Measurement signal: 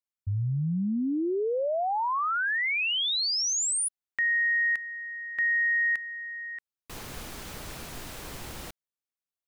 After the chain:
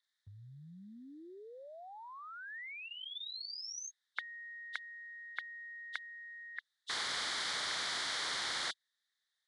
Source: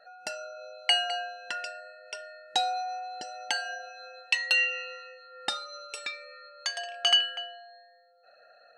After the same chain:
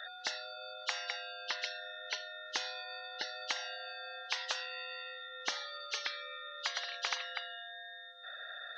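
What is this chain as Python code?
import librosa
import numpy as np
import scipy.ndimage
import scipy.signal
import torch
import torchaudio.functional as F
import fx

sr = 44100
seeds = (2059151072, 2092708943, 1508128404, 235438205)

y = fx.freq_compress(x, sr, knee_hz=2700.0, ratio=1.5)
y = fx.double_bandpass(y, sr, hz=2600.0, octaves=1.0)
y = fx.spectral_comp(y, sr, ratio=10.0)
y = y * librosa.db_to_amplitude(3.0)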